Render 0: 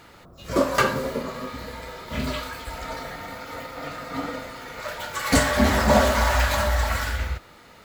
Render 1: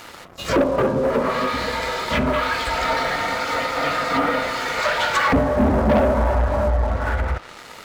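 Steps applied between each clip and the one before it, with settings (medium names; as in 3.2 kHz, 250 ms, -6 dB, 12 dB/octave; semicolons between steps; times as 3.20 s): low-pass that closes with the level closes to 480 Hz, closed at -20.5 dBFS; bass shelf 320 Hz -10 dB; waveshaping leveller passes 3; trim +3.5 dB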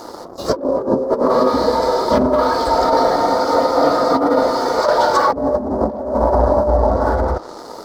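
FFT filter 150 Hz 0 dB, 320 Hz +13 dB, 1 kHz +8 dB, 2.6 kHz -19 dB, 4.8 kHz +6 dB, 8.2 kHz -1 dB; compressor with a negative ratio -13 dBFS, ratio -0.5; dynamic bell 6.9 kHz, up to -6 dB, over -53 dBFS, Q 6.6; trim -1 dB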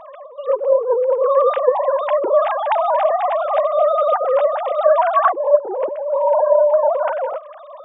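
formants replaced by sine waves; trim -1 dB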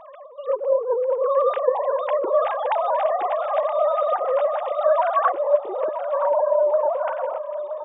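feedback delay 972 ms, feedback 30%, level -10.5 dB; trim -5 dB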